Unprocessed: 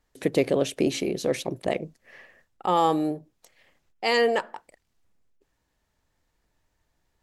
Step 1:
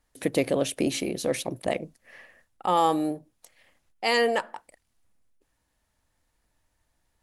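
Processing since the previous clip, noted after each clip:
thirty-one-band graphic EQ 160 Hz −4 dB, 400 Hz −6 dB, 10,000 Hz +10 dB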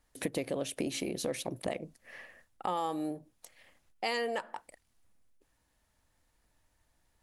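downward compressor 4 to 1, threshold −32 dBFS, peak gain reduction 12.5 dB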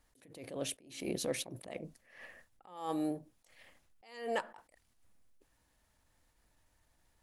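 level that may rise only so fast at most 100 dB per second
level +1 dB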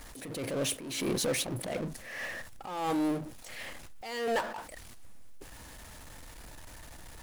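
power curve on the samples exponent 0.5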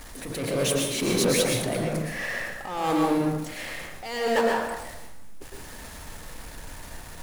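dense smooth reverb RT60 0.85 s, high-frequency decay 0.6×, pre-delay 100 ms, DRR −0.5 dB
level +5 dB

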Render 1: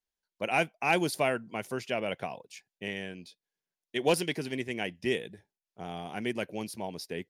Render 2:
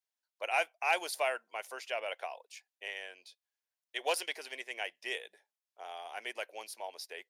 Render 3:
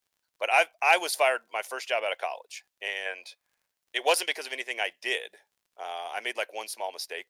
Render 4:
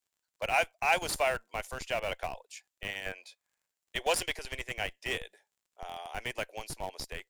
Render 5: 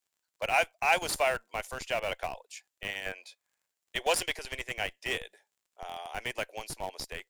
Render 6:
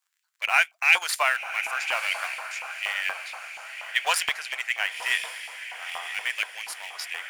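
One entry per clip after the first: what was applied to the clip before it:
high-pass filter 570 Hz 24 dB per octave; level −2.5 dB
gain on a spectral selection 0:03.06–0:03.66, 470–2,600 Hz +8 dB; surface crackle 49 per second −64 dBFS; level +8.5 dB
parametric band 7,400 Hz +8 dB 0.26 octaves; in parallel at −4 dB: comparator with hysteresis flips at −26.5 dBFS; on the sum: level −6.5 dB
low-shelf EQ 160 Hz −4.5 dB; level +1.5 dB
feedback delay with all-pass diffusion 1,024 ms, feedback 53%, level −9.5 dB; auto-filter high-pass saw up 4.2 Hz 990–2,400 Hz; level +4 dB

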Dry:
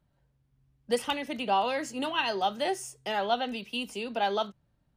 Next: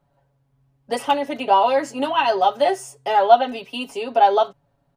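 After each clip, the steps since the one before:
parametric band 730 Hz +11.5 dB 1.7 octaves
comb filter 7.2 ms, depth 94%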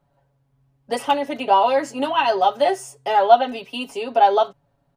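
no processing that can be heard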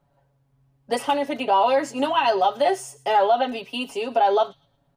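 brickwall limiter −10.5 dBFS, peak gain reduction 9 dB
delay with a high-pass on its return 113 ms, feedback 31%, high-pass 3,100 Hz, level −18 dB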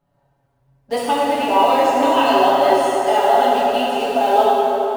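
in parallel at −9 dB: bit reduction 5 bits
on the sum: dense smooth reverb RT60 4 s, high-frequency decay 0.6×, DRR −7 dB
level −4.5 dB

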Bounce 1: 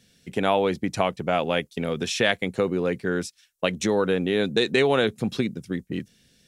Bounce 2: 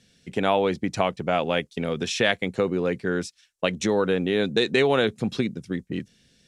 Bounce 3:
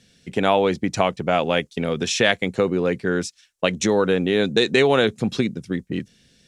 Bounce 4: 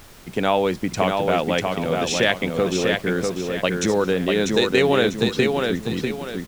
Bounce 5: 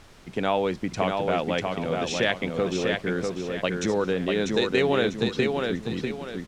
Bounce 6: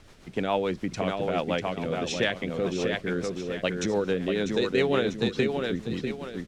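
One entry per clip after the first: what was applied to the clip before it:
low-pass filter 8,700 Hz 12 dB per octave
dynamic equaliser 6,700 Hz, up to +4 dB, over −48 dBFS, Q 1.9; level +3.5 dB
background noise pink −44 dBFS; on a send: repeating echo 645 ms, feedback 35%, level −4 dB; on the sum: level −1.5 dB
high-frequency loss of the air 54 metres; level −4.5 dB
rotating-speaker cabinet horn 7 Hz

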